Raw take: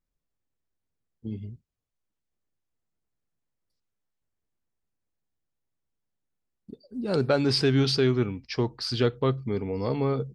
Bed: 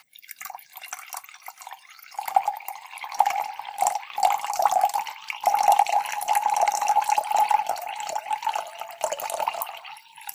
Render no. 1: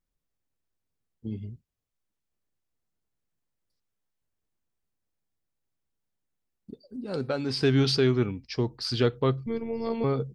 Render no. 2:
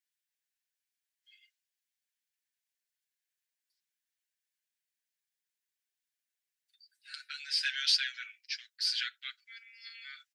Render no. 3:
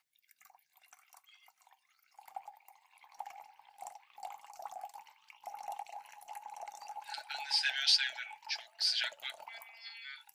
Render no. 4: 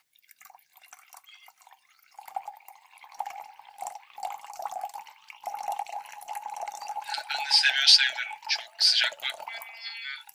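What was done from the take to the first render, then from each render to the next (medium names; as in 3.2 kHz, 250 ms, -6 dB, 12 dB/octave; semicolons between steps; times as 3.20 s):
6.96–7.63 s: feedback comb 260 Hz, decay 0.19 s; 8.31–8.85 s: peaking EQ 1.4 kHz -5.5 dB 2.5 oct; 9.46–10.04 s: robot voice 229 Hz
steep high-pass 1.5 kHz 96 dB/octave; comb 6.7 ms, depth 73%
add bed -25 dB
trim +10.5 dB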